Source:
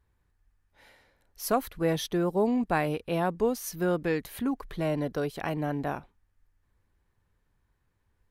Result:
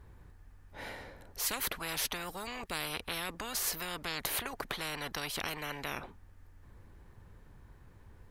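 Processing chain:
tilt shelving filter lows +4 dB, about 1,400 Hz
every bin compressed towards the loudest bin 10 to 1
level −6 dB

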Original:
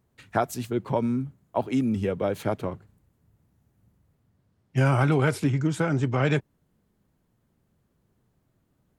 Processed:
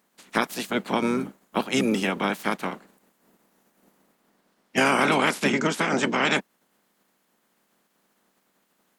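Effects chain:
ceiling on every frequency bin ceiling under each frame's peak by 26 dB
low shelf with overshoot 140 Hz −11.5 dB, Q 3

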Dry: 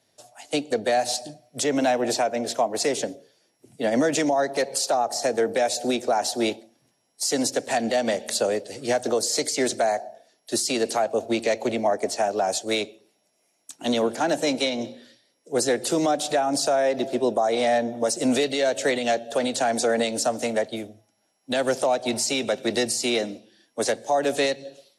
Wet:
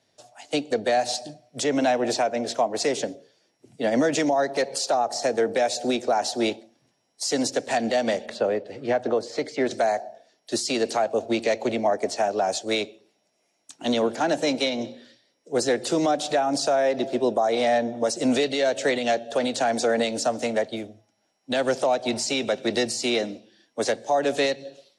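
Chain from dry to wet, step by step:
low-pass filter 7,100 Hz 12 dB per octave, from 0:08.26 2,400 Hz, from 0:09.71 6,800 Hz

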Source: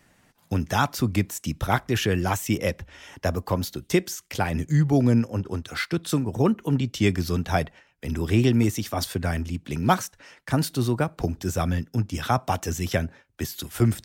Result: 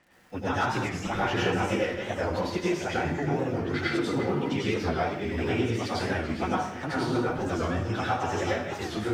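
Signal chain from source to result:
feedback delay that plays each chunk backwards 467 ms, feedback 51%, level −12.5 dB
low-pass filter 6,800 Hz 12 dB per octave
bass and treble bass −8 dB, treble −9 dB
mains-hum notches 50/100 Hz
downward compressor 3 to 1, threshold −26 dBFS, peak gain reduction 9.5 dB
time stretch by phase vocoder 0.65×
surface crackle 85 per second −52 dBFS
dense smooth reverb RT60 0.64 s, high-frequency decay 0.85×, pre-delay 80 ms, DRR −6.5 dB
wow of a warped record 45 rpm, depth 160 cents

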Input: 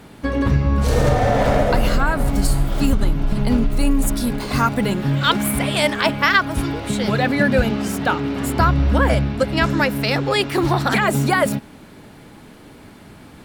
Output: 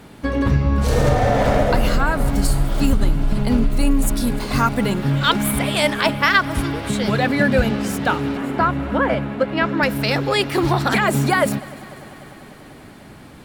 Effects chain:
0:08.37–0:09.83: three-way crossover with the lows and the highs turned down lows −15 dB, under 160 Hz, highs −21 dB, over 3,300 Hz
echo machine with several playback heads 99 ms, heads second and third, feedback 74%, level −23 dB

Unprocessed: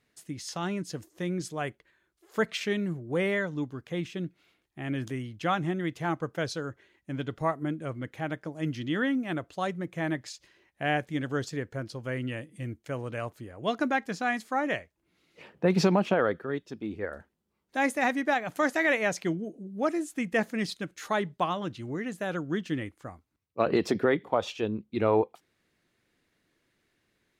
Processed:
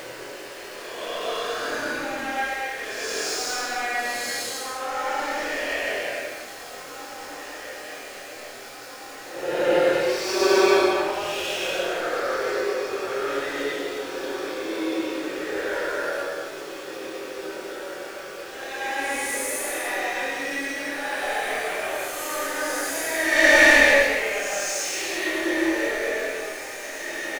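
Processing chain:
Butterworth high-pass 330 Hz 48 dB per octave
high-shelf EQ 2,200 Hz +6.5 dB
mains-hum notches 60/120/180/240/300/360/420/480 Hz
output level in coarse steps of 22 dB
leveller curve on the samples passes 3
feedback delay with all-pass diffusion 494 ms, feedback 80%, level −12 dB
centre clipping without the shift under −46 dBFS
double-tracking delay 25 ms −4 dB
extreme stretch with random phases 4.3×, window 0.25 s, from 0:13.39
level +5 dB

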